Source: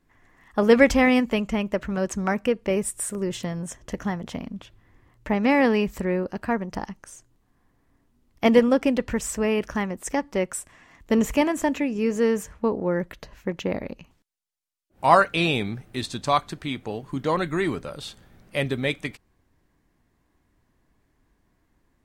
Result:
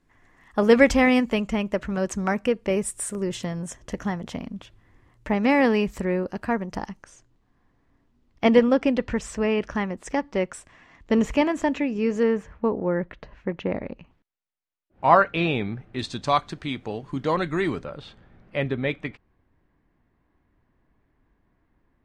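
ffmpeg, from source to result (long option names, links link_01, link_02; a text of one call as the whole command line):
ffmpeg -i in.wav -af "asetnsamples=nb_out_samples=441:pad=0,asendcmd='7.03 lowpass f 5100;12.23 lowpass f 2600;15.99 lowpass f 6300;17.84 lowpass f 2500',lowpass=11000" out.wav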